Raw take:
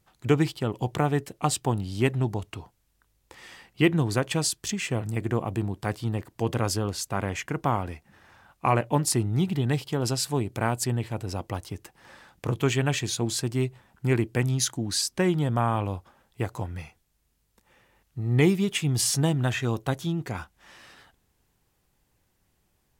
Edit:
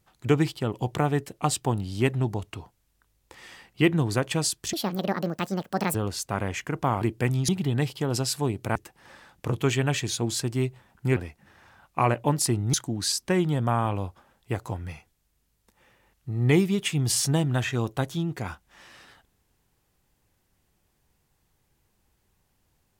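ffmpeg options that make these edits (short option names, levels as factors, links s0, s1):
-filter_complex "[0:a]asplit=8[s0][s1][s2][s3][s4][s5][s6][s7];[s0]atrim=end=4.734[s8];[s1]atrim=start=4.73:end=6.76,asetpts=PTS-STARTPTS,asetrate=73647,aresample=44100[s9];[s2]atrim=start=6.756:end=7.832[s10];[s3]atrim=start=14.158:end=14.632[s11];[s4]atrim=start=9.398:end=10.672[s12];[s5]atrim=start=11.748:end=14.162[s13];[s6]atrim=start=7.828:end=9.402[s14];[s7]atrim=start=14.628[s15];[s8][s9]acrossfade=d=0.004:c1=hsin:c2=hsin[s16];[s16][s10]acrossfade=d=0.004:c1=hsin:c2=hsin[s17];[s17][s11]acrossfade=d=0.004:c1=hsin:c2=hsin[s18];[s18][s12]acrossfade=d=0.004:c1=hsin:c2=hsin[s19];[s19][s13]acrossfade=d=0.004:c1=hsin:c2=hsin[s20];[s20][s14]acrossfade=d=0.004:c1=hsin:c2=hsin[s21];[s21][s15]acrossfade=d=0.004:c1=hsin:c2=hsin"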